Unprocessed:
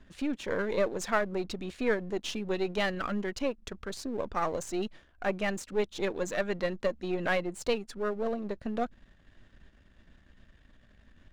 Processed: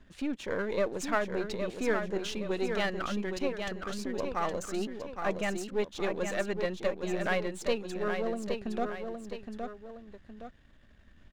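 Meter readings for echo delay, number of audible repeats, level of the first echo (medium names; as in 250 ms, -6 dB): 816 ms, 2, -6.0 dB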